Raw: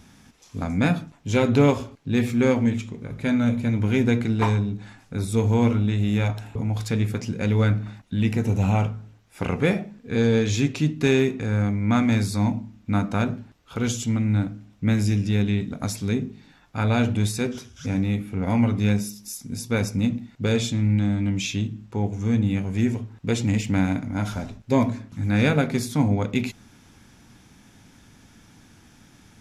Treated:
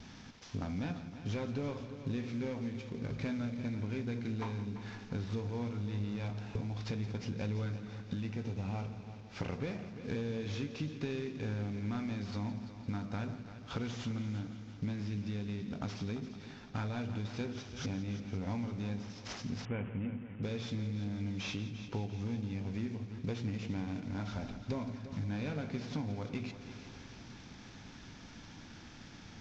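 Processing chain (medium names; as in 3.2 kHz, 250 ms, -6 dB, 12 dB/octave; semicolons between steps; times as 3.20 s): CVSD coder 32 kbps; compression 10:1, threshold -35 dBFS, peak gain reduction 22 dB; multi-head delay 171 ms, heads first and second, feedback 59%, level -14.5 dB; gate with hold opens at -46 dBFS; 19.65–20.43 s: steep low-pass 3.1 kHz 96 dB/octave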